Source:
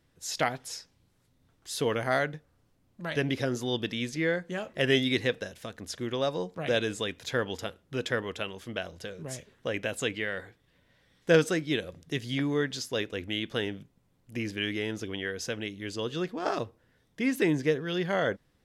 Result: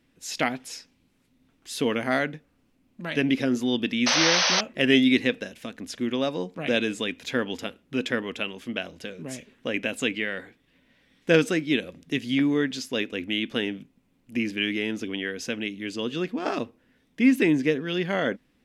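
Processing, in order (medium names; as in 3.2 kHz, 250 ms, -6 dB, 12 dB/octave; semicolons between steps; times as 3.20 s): fifteen-band graphic EQ 100 Hz -8 dB, 250 Hz +11 dB, 2.5 kHz +8 dB; painted sound noise, 4.06–4.61 s, 470–6300 Hz -22 dBFS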